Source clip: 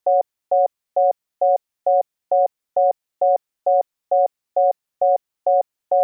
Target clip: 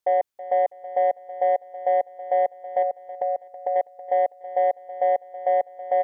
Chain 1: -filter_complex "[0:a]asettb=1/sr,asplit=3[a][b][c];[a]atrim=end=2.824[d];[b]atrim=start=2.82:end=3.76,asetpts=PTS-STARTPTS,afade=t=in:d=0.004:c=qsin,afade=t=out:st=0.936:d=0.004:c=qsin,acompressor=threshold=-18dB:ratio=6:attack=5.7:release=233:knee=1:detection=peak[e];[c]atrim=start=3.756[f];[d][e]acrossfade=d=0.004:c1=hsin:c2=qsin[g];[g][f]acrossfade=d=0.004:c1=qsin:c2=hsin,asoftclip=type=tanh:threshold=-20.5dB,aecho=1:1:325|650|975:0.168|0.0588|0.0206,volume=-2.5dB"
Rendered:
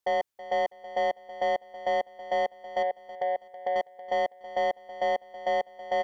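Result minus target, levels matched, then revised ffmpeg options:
soft clip: distortion +12 dB
-filter_complex "[0:a]asettb=1/sr,asplit=3[a][b][c];[a]atrim=end=2.824[d];[b]atrim=start=2.82:end=3.76,asetpts=PTS-STARTPTS,afade=t=in:d=0.004:c=qsin,afade=t=out:st=0.936:d=0.004:c=qsin,acompressor=threshold=-18dB:ratio=6:attack=5.7:release=233:knee=1:detection=peak[e];[c]atrim=start=3.756[f];[d][e]acrossfade=d=0.004:c1=hsin:c2=qsin[g];[g][f]acrossfade=d=0.004:c1=qsin:c2=hsin,asoftclip=type=tanh:threshold=-10dB,aecho=1:1:325|650|975:0.168|0.0588|0.0206,volume=-2.5dB"

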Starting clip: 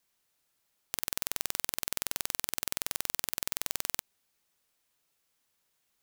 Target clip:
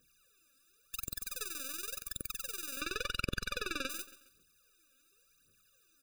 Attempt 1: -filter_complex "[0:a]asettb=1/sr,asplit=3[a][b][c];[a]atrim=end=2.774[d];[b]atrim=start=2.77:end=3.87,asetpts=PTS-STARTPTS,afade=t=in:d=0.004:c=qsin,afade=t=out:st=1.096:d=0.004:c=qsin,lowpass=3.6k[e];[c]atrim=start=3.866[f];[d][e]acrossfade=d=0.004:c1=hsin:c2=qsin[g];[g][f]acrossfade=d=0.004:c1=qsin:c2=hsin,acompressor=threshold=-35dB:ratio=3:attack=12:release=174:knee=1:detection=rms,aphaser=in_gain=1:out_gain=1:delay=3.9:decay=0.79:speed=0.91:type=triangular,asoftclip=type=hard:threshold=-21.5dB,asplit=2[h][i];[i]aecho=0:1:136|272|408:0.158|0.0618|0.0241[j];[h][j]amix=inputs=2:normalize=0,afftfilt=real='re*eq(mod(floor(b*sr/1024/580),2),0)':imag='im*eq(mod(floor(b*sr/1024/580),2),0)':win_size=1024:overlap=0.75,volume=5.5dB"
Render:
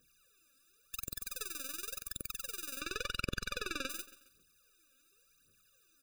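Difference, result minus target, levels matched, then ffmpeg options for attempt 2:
compressor: peak gain reduction +5.5 dB
-filter_complex "[0:a]asettb=1/sr,asplit=3[a][b][c];[a]atrim=end=2.774[d];[b]atrim=start=2.77:end=3.87,asetpts=PTS-STARTPTS,afade=t=in:d=0.004:c=qsin,afade=t=out:st=1.096:d=0.004:c=qsin,lowpass=3.6k[e];[c]atrim=start=3.866[f];[d][e]acrossfade=d=0.004:c1=hsin:c2=qsin[g];[g][f]acrossfade=d=0.004:c1=qsin:c2=hsin,acompressor=threshold=-27dB:ratio=3:attack=12:release=174:knee=1:detection=rms,aphaser=in_gain=1:out_gain=1:delay=3.9:decay=0.79:speed=0.91:type=triangular,asoftclip=type=hard:threshold=-21.5dB,asplit=2[h][i];[i]aecho=0:1:136|272|408:0.158|0.0618|0.0241[j];[h][j]amix=inputs=2:normalize=0,afftfilt=real='re*eq(mod(floor(b*sr/1024/580),2),0)':imag='im*eq(mod(floor(b*sr/1024/580),2),0)':win_size=1024:overlap=0.75,volume=5.5dB"

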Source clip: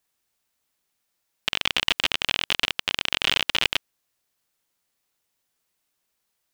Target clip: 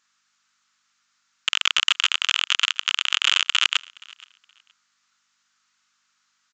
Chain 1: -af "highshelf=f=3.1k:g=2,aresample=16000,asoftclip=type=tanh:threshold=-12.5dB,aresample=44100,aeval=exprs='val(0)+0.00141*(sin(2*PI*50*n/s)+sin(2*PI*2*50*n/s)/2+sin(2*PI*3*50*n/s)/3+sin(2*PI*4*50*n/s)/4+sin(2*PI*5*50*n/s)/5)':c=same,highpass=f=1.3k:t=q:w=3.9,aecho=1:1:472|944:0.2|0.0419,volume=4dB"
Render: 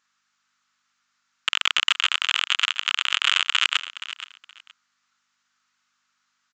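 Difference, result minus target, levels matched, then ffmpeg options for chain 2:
echo-to-direct +10.5 dB; 8000 Hz band -3.0 dB
-af "highshelf=f=3.1k:g=8.5,aresample=16000,asoftclip=type=tanh:threshold=-12.5dB,aresample=44100,aeval=exprs='val(0)+0.00141*(sin(2*PI*50*n/s)+sin(2*PI*2*50*n/s)/2+sin(2*PI*3*50*n/s)/3+sin(2*PI*4*50*n/s)/4+sin(2*PI*5*50*n/s)/5)':c=same,highpass=f=1.3k:t=q:w=3.9,aecho=1:1:472|944:0.0596|0.0125,volume=4dB"

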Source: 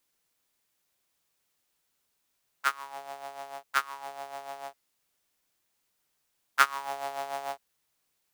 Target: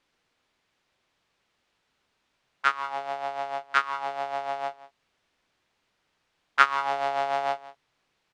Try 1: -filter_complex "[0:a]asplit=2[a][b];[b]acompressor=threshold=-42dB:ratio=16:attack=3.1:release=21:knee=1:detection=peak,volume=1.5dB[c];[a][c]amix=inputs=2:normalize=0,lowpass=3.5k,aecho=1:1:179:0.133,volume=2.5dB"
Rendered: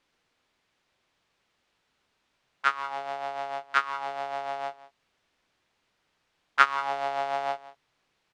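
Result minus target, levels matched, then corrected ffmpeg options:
compressor: peak gain reduction +7 dB
-filter_complex "[0:a]asplit=2[a][b];[b]acompressor=threshold=-34.5dB:ratio=16:attack=3.1:release=21:knee=1:detection=peak,volume=1.5dB[c];[a][c]amix=inputs=2:normalize=0,lowpass=3.5k,aecho=1:1:179:0.133,volume=2.5dB"

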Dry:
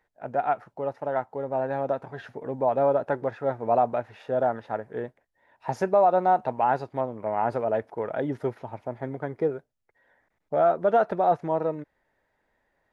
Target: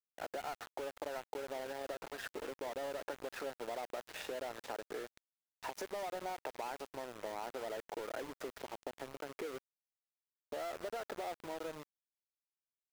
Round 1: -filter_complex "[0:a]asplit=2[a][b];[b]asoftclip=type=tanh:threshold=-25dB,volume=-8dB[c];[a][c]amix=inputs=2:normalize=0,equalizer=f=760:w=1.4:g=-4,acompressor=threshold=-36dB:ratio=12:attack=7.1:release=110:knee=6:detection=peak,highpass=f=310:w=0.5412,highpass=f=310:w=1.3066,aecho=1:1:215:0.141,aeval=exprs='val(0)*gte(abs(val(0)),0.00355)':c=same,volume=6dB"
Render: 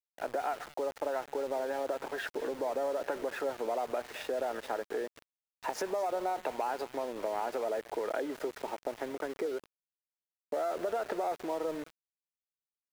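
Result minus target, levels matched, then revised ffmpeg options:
compressor: peak gain reduction -8.5 dB
-filter_complex "[0:a]asplit=2[a][b];[b]asoftclip=type=tanh:threshold=-25dB,volume=-8dB[c];[a][c]amix=inputs=2:normalize=0,equalizer=f=760:w=1.4:g=-4,acompressor=threshold=-45dB:ratio=12:attack=7.1:release=110:knee=6:detection=peak,highpass=f=310:w=0.5412,highpass=f=310:w=1.3066,aecho=1:1:215:0.141,aeval=exprs='val(0)*gte(abs(val(0)),0.00355)':c=same,volume=6dB"

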